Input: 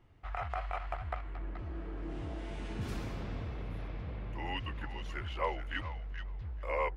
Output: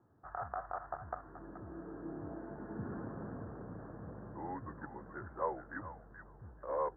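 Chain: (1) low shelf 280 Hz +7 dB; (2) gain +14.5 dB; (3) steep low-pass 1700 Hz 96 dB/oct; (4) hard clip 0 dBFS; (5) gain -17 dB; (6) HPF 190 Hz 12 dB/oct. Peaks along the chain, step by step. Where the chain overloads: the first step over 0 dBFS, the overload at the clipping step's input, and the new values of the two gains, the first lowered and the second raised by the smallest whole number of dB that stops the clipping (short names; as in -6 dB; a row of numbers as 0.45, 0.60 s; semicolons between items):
-18.0, -3.5, -3.5, -3.5, -20.5, -22.5 dBFS; no overload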